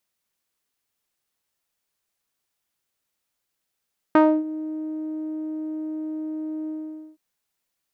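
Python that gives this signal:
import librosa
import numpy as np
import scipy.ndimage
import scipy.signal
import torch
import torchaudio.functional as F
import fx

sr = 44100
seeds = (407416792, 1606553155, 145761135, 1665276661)

y = fx.sub_voice(sr, note=63, wave='saw', cutoff_hz=350.0, q=1.5, env_oct=2.0, env_s=0.25, attack_ms=3.1, decay_s=0.28, sustain_db=-18, release_s=0.49, note_s=2.53, slope=12)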